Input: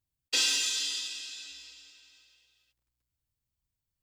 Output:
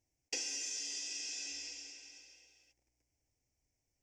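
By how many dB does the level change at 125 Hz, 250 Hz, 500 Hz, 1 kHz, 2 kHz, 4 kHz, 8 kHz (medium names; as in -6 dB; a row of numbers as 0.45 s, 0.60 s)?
no reading, -4.5 dB, -4.5 dB, -11.5 dB, -11.0 dB, -12.5 dB, -6.5 dB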